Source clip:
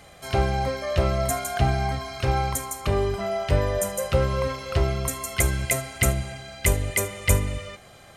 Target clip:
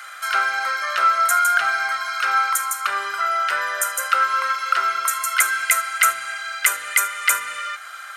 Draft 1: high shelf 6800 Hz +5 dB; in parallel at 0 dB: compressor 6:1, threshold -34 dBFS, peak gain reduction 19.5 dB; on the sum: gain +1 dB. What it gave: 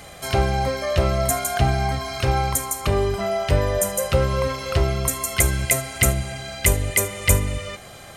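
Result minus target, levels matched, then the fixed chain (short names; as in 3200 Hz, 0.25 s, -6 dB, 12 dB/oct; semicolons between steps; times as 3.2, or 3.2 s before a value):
1000 Hz band -5.5 dB
resonant high-pass 1400 Hz, resonance Q 11; high shelf 6800 Hz +5 dB; in parallel at 0 dB: compressor 6:1, threshold -34 dBFS, peak gain reduction 18.5 dB; on the sum: gain +1 dB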